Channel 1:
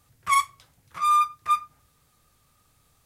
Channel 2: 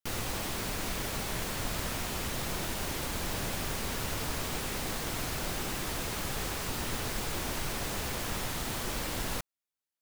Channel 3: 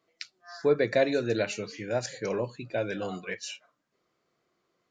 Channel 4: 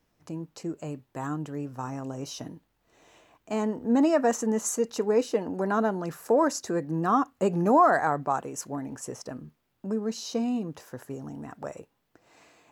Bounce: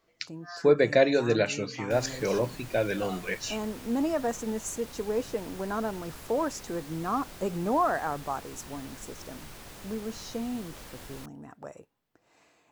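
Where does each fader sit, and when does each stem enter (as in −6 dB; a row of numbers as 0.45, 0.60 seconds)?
muted, −11.5 dB, +3.0 dB, −6.0 dB; muted, 1.85 s, 0.00 s, 0.00 s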